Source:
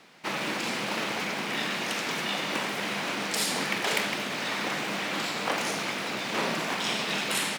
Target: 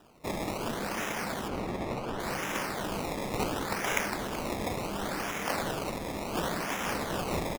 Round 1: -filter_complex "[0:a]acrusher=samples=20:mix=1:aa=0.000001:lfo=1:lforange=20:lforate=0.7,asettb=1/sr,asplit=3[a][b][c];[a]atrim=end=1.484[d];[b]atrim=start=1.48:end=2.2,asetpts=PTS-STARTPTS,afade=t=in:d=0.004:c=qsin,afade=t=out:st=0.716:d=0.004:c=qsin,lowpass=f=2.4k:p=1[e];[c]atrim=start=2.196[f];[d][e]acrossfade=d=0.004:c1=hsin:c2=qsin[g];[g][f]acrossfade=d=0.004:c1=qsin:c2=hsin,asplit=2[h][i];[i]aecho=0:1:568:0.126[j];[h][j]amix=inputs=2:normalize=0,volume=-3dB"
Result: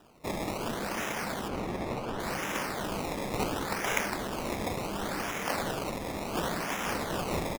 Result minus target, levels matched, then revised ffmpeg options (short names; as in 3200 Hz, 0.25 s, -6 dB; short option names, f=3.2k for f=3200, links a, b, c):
echo 0.19 s late
-filter_complex "[0:a]acrusher=samples=20:mix=1:aa=0.000001:lfo=1:lforange=20:lforate=0.7,asettb=1/sr,asplit=3[a][b][c];[a]atrim=end=1.484[d];[b]atrim=start=1.48:end=2.2,asetpts=PTS-STARTPTS,afade=t=in:d=0.004:c=qsin,afade=t=out:st=0.716:d=0.004:c=qsin,lowpass=f=2.4k:p=1[e];[c]atrim=start=2.196[f];[d][e]acrossfade=d=0.004:c1=hsin:c2=qsin[g];[g][f]acrossfade=d=0.004:c1=qsin:c2=hsin,asplit=2[h][i];[i]aecho=0:1:378:0.126[j];[h][j]amix=inputs=2:normalize=0,volume=-3dB"